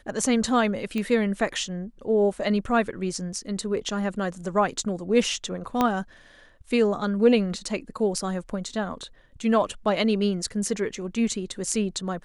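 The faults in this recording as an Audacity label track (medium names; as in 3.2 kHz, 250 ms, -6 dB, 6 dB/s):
0.980000	0.980000	pop -17 dBFS
5.810000	5.810000	pop -9 dBFS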